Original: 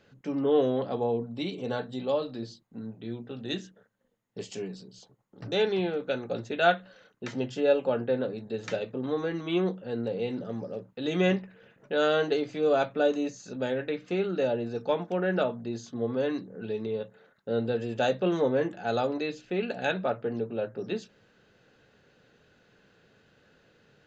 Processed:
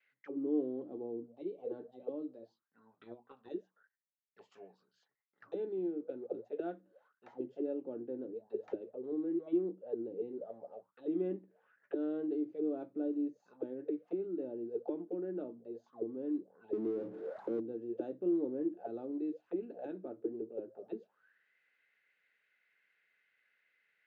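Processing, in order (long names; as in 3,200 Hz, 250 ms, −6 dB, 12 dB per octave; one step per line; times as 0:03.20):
0:16.73–0:17.60: power curve on the samples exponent 0.35
noise gate with hold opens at −58 dBFS
envelope filter 320–2,200 Hz, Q 9.7, down, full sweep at −27 dBFS
0:02.93–0:03.49: transient designer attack +11 dB, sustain −1 dB
level +2.5 dB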